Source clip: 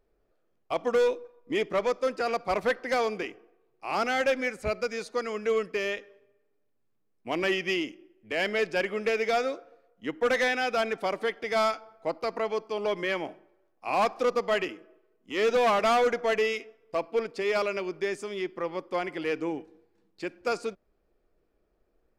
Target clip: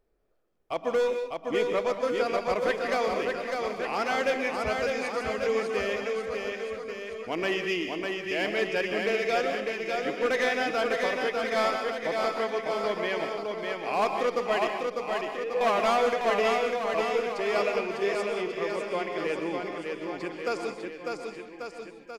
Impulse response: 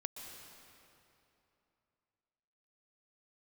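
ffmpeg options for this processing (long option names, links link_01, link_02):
-filter_complex "[0:a]asettb=1/sr,asplit=3[link_01][link_02][link_03];[link_01]atrim=end=14.684[link_04];[link_02]atrim=start=14.68:end=15.61,asetpts=PTS-STARTPTS,afade=type=in:duration=0.004:curve=qsin,afade=type=out:start_time=0.926:duration=0.004:curve=qsin,asplit=3[link_05][link_06][link_07];[link_05]bandpass=frequency=530:width_type=q:width=8,volume=0dB[link_08];[link_06]bandpass=frequency=1840:width_type=q:width=8,volume=-6dB[link_09];[link_07]bandpass=frequency=2480:width_type=q:width=8,volume=-9dB[link_10];[link_08][link_09][link_10]amix=inputs=3:normalize=0[link_11];[link_03]atrim=start=15.606[link_12];[link_04][link_11]acrossfade=duration=0.004:curve1=hsin:curve2=qsin[link_13];[link_13][link_12]acrossfade=duration=0.004:curve1=qsin:curve2=hsin,aecho=1:1:600|1140|1626|2063|2457:0.631|0.398|0.251|0.158|0.1[link_14];[1:a]atrim=start_sample=2205,afade=type=out:start_time=0.26:duration=0.01,atrim=end_sample=11907[link_15];[link_14][link_15]afir=irnorm=-1:irlink=0,volume=1.5dB"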